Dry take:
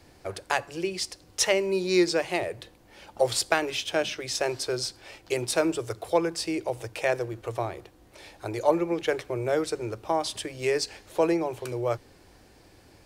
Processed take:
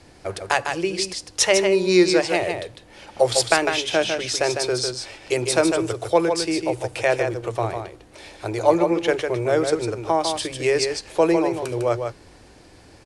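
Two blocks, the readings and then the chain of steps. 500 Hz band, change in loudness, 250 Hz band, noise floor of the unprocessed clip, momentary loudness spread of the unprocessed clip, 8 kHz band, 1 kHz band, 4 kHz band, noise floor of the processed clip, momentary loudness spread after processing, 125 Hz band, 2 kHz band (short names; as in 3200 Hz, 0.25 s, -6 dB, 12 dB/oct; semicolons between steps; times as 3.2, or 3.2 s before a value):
+6.5 dB, +6.5 dB, +6.5 dB, -56 dBFS, 10 LU, +6.5 dB, +6.5 dB, +6.5 dB, -49 dBFS, 10 LU, +6.5 dB, +6.5 dB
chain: steep low-pass 11000 Hz 48 dB/oct; on a send: echo 0.152 s -6 dB; on the sum: gain +5.5 dB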